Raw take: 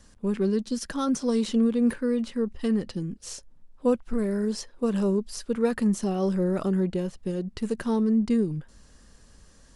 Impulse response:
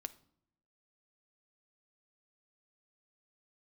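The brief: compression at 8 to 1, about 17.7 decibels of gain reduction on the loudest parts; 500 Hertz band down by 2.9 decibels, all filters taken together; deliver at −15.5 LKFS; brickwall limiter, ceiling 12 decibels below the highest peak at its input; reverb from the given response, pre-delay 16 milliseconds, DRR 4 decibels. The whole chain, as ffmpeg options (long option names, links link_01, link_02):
-filter_complex "[0:a]equalizer=frequency=500:width_type=o:gain=-3.5,acompressor=threshold=-39dB:ratio=8,alimiter=level_in=12dB:limit=-24dB:level=0:latency=1,volume=-12dB,asplit=2[link_01][link_02];[1:a]atrim=start_sample=2205,adelay=16[link_03];[link_02][link_03]afir=irnorm=-1:irlink=0,volume=-0.5dB[link_04];[link_01][link_04]amix=inputs=2:normalize=0,volume=27.5dB"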